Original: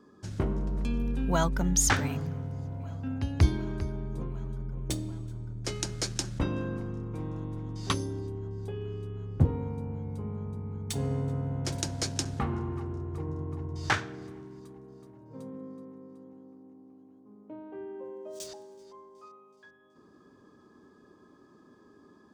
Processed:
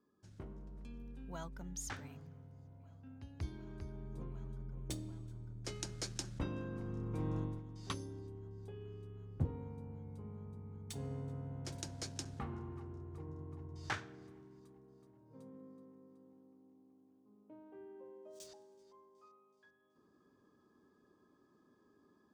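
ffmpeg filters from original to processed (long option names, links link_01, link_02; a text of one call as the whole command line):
ffmpeg -i in.wav -af "volume=-1dB,afade=type=in:start_time=3.43:duration=0.85:silence=0.316228,afade=type=in:start_time=6.71:duration=0.67:silence=0.354813,afade=type=out:start_time=7.38:duration=0.25:silence=0.266073" out.wav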